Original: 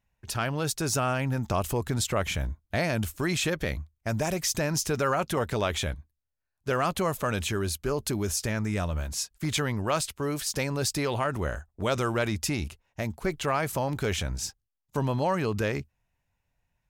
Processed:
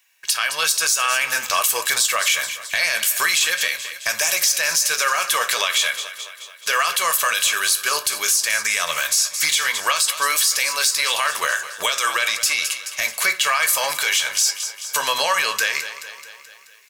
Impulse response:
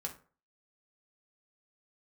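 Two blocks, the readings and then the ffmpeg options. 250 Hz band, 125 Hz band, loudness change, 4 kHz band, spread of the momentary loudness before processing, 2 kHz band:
−18.0 dB, below −20 dB, +10.5 dB, +15.5 dB, 6 LU, +15.0 dB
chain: -filter_complex "[0:a]highpass=1500,acompressor=threshold=-44dB:ratio=4,highshelf=frequency=2000:gain=9.5,aecho=1:1:215|430|645|860|1075|1290:0.158|0.0919|0.0533|0.0309|0.0179|0.0104,asplit=2[link_01][link_02];[1:a]atrim=start_sample=2205[link_03];[link_02][link_03]afir=irnorm=-1:irlink=0,volume=-3dB[link_04];[link_01][link_04]amix=inputs=2:normalize=0,asoftclip=type=tanh:threshold=-21dB,dynaudnorm=framelen=100:gausssize=9:maxgain=7dB,aecho=1:1:1.8:0.41,flanger=delay=9.7:depth=3.8:regen=-69:speed=0.48:shape=triangular,alimiter=level_in=25dB:limit=-1dB:release=50:level=0:latency=1,volume=-7.5dB"

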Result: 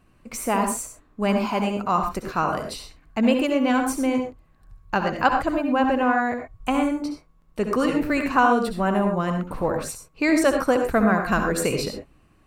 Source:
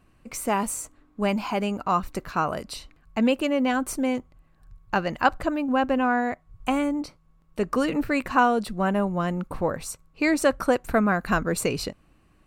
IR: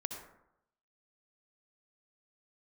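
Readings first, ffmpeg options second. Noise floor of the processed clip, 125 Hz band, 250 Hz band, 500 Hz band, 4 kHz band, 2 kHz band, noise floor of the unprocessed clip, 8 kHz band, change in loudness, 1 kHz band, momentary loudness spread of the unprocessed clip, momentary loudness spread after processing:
−58 dBFS, +2.0 dB, +2.5 dB, +2.5 dB, +1.5 dB, +2.0 dB, −61 dBFS, +1.5 dB, +2.5 dB, +2.5 dB, 11 LU, 11 LU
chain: -filter_complex "[1:a]atrim=start_sample=2205,atrim=end_sample=6174[link_01];[0:a][link_01]afir=irnorm=-1:irlink=0,volume=2.5dB"

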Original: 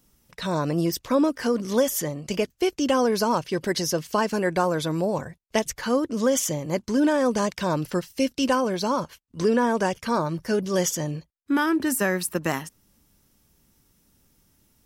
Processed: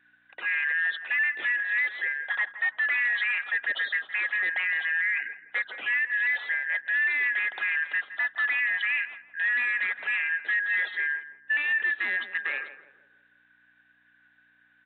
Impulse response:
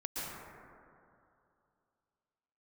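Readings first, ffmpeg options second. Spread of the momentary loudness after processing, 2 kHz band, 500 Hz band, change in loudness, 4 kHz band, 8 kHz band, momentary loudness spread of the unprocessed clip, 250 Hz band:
6 LU, +11.0 dB, below −25 dB, −1.5 dB, −6.0 dB, below −40 dB, 7 LU, below −35 dB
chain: -filter_complex "[0:a]afftfilt=real='real(if(lt(b,272),68*(eq(floor(b/68),0)*1+eq(floor(b/68),1)*0+eq(floor(b/68),2)*3+eq(floor(b/68),3)*2)+mod(b,68),b),0)':imag='imag(if(lt(b,272),68*(eq(floor(b/68),0)*1+eq(floor(b/68),1)*0+eq(floor(b/68),2)*3+eq(floor(b/68),3)*2)+mod(b,68),b),0)':win_size=2048:overlap=0.75,aeval=exprs='val(0)+0.00355*(sin(2*PI*60*n/s)+sin(2*PI*2*60*n/s)/2+sin(2*PI*3*60*n/s)/3+sin(2*PI*4*60*n/s)/4+sin(2*PI*5*60*n/s)/5)':channel_layout=same,aresample=8000,asoftclip=type=tanh:threshold=-18.5dB,aresample=44100,asplit=2[link_01][link_02];[link_02]adelay=165,lowpass=frequency=1100:poles=1,volume=-11dB,asplit=2[link_03][link_04];[link_04]adelay=165,lowpass=frequency=1100:poles=1,volume=0.45,asplit=2[link_05][link_06];[link_06]adelay=165,lowpass=frequency=1100:poles=1,volume=0.45,asplit=2[link_07][link_08];[link_08]adelay=165,lowpass=frequency=1100:poles=1,volume=0.45,asplit=2[link_09][link_10];[link_10]adelay=165,lowpass=frequency=1100:poles=1,volume=0.45[link_11];[link_01][link_03][link_05][link_07][link_09][link_11]amix=inputs=6:normalize=0,acompressor=mode=upward:threshold=-47dB:ratio=2.5,alimiter=limit=-20.5dB:level=0:latency=1:release=22,highpass=770,lowpass=3000,volume=2dB"

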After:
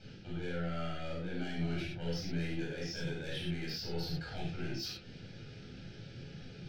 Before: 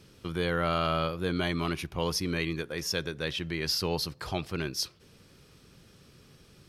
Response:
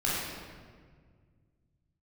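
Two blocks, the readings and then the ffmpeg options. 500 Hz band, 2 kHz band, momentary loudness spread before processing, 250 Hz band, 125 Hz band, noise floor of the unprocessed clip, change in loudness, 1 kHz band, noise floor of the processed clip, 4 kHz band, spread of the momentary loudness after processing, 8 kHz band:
−9.5 dB, −9.0 dB, 6 LU, −5.0 dB, −4.0 dB, −58 dBFS, −9.0 dB, −14.0 dB, −51 dBFS, −9.5 dB, 12 LU, −14.0 dB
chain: -filter_complex "[0:a]lowpass=frequency=5200:width=0.5412,lowpass=frequency=5200:width=1.3066,areverse,acompressor=threshold=-39dB:ratio=10,areverse,asoftclip=type=tanh:threshold=-40dB,flanger=delay=3.8:depth=5.2:regen=55:speed=1.4:shape=sinusoidal,asuperstop=centerf=1100:order=4:qfactor=2.4[link_01];[1:a]atrim=start_sample=2205,afade=type=out:start_time=0.17:duration=0.01,atrim=end_sample=7938[link_02];[link_01][link_02]afir=irnorm=-1:irlink=0,volume=2.5dB"

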